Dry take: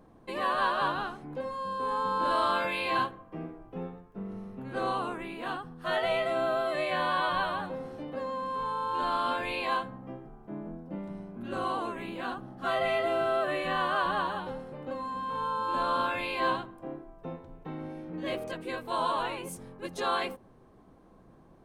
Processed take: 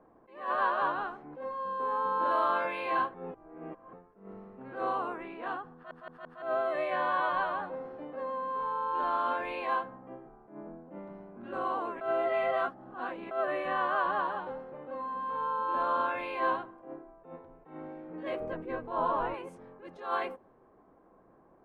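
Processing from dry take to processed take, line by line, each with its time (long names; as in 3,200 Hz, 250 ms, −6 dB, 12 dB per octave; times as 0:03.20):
0:03.14–0:03.93: reverse
0:05.74: stutter in place 0.17 s, 4 plays
0:12.01–0:13.31: reverse
0:18.40–0:19.34: RIAA equalisation playback
whole clip: low-pass that shuts in the quiet parts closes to 2,400 Hz, open at −29 dBFS; three-way crossover with the lows and the highs turned down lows −12 dB, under 300 Hz, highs −17 dB, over 2,200 Hz; level that may rise only so fast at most 130 dB per second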